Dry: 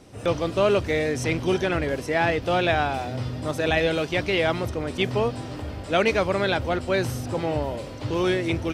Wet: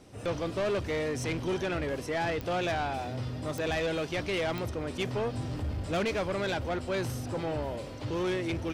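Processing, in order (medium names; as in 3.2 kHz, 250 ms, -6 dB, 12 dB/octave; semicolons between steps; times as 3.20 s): 5.34–6.05 s: tone controls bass +8 dB, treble +2 dB; saturation -21 dBFS, distortion -12 dB; clicks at 2.41/3.58/4.58 s, -18 dBFS; trim -4.5 dB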